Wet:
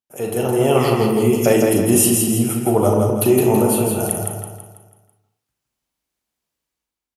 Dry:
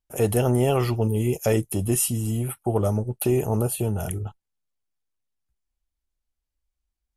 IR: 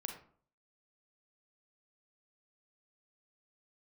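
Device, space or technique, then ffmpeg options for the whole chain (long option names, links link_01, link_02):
far laptop microphone: -filter_complex "[0:a]asettb=1/sr,asplit=3[link_01][link_02][link_03];[link_01]atrim=end=3.844[link_04];[link_02]atrim=start=3.84:end=4.24,asetpts=PTS-STARTPTS,afade=type=in:duration=0.004:curve=qsin,afade=type=out:start_time=0.396:duration=0.004:curve=qsin,equalizer=frequency=250:width_type=o:width=0.67:gain=-11,equalizer=frequency=2500:width_type=o:width=0.67:gain=-7,equalizer=frequency=10000:width_type=o:width=0.67:gain=7[link_05];[link_03]atrim=start=4.236[link_06];[link_04][link_05]acrossfade=duration=0.004:curve1=hsin:curve2=qsin[link_07];[link_07][link_06]acrossfade=duration=0.004:curve1=qsin:curve2=hsin[link_08];[1:a]atrim=start_sample=2205[link_09];[link_08][link_09]afir=irnorm=-1:irlink=0,highpass=160,dynaudnorm=framelen=120:gausssize=9:maxgain=11.5dB,aecho=1:1:164|328|492|656|820|984:0.631|0.284|0.128|0.0575|0.0259|0.0116"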